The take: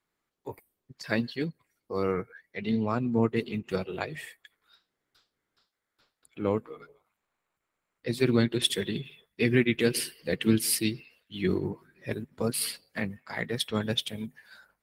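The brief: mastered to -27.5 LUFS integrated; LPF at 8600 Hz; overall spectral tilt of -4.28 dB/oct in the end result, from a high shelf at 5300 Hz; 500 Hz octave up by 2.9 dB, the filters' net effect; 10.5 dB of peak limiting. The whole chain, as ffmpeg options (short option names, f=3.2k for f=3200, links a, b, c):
-af "lowpass=8.6k,equalizer=f=500:t=o:g=3.5,highshelf=f=5.3k:g=6,volume=4dB,alimiter=limit=-14.5dB:level=0:latency=1"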